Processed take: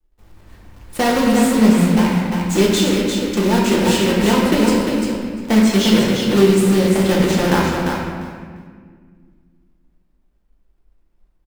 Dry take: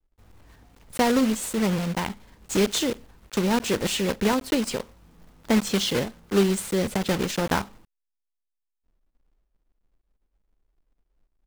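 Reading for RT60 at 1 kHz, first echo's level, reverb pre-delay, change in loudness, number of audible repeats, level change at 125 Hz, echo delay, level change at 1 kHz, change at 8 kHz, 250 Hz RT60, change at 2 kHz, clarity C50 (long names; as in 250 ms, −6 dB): 1.7 s, −5.0 dB, 3 ms, +9.0 dB, 2, +11.0 dB, 348 ms, +8.5 dB, +5.5 dB, 2.6 s, +8.5 dB, −1.5 dB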